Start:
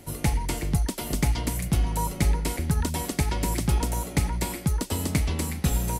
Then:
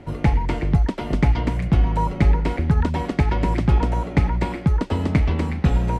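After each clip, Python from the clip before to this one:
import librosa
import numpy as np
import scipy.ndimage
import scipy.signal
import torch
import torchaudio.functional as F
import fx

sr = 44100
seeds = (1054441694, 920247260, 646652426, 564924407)

y = scipy.signal.sosfilt(scipy.signal.butter(2, 2200.0, 'lowpass', fs=sr, output='sos'), x)
y = F.gain(torch.from_numpy(y), 6.5).numpy()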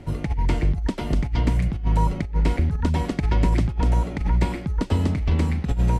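y = fx.low_shelf(x, sr, hz=210.0, db=8.0)
y = fx.over_compress(y, sr, threshold_db=-13.0, ratio=-0.5)
y = fx.high_shelf(y, sr, hz=3800.0, db=10.0)
y = F.gain(torch.from_numpy(y), -6.0).numpy()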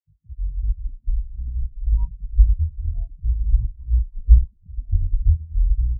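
y = fx.echo_stepped(x, sr, ms=536, hz=3200.0, octaves=-0.7, feedback_pct=70, wet_db=-0.5)
y = fx.echo_pitch(y, sr, ms=151, semitones=-6, count=3, db_per_echo=-3.0)
y = fx.spectral_expand(y, sr, expansion=4.0)
y = F.gain(torch.from_numpy(y), 4.5).numpy()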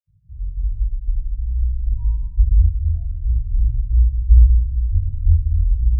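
y = fx.room_shoebox(x, sr, seeds[0], volume_m3=3900.0, walls='furnished', distance_m=5.9)
y = F.gain(torch.from_numpy(y), -6.5).numpy()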